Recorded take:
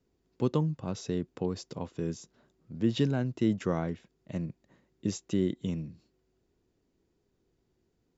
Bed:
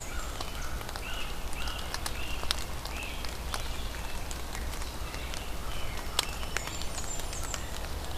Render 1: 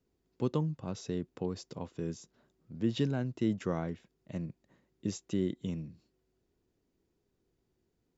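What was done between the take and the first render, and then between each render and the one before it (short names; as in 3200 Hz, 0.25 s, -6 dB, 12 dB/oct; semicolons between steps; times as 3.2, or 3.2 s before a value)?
gain -3.5 dB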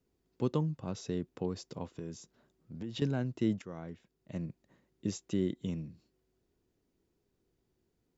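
1.93–3.02 compressor, threshold -36 dBFS; 3.62–4.45 fade in, from -15 dB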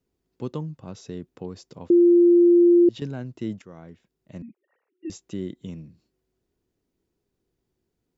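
1.9–2.89 bleep 347 Hz -11.5 dBFS; 4.42–5.1 sine-wave speech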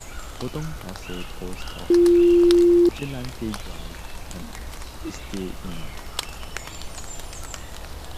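add bed 0 dB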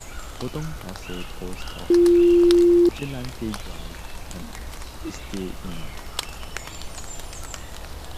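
nothing audible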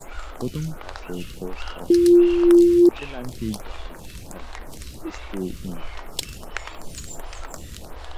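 in parallel at -5 dB: backlash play -34 dBFS; on the sum: photocell phaser 1.4 Hz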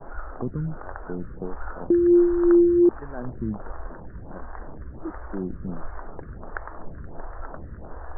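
steep low-pass 1700 Hz 72 dB/oct; dynamic EQ 490 Hz, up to -4 dB, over -30 dBFS, Q 0.73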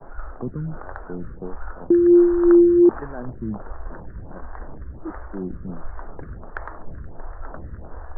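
reverse; upward compressor, threshold -25 dBFS; reverse; three-band expander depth 40%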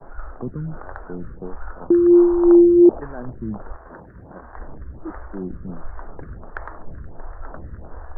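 1.8–3 synth low-pass 1300 Hz -> 570 Hz, resonance Q 2.5; 3.75–4.54 HPF 220 Hz -> 100 Hz 6 dB/oct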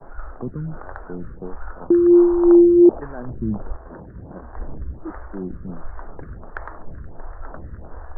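3.3–4.94 tilt shelf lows +5.5 dB, about 740 Hz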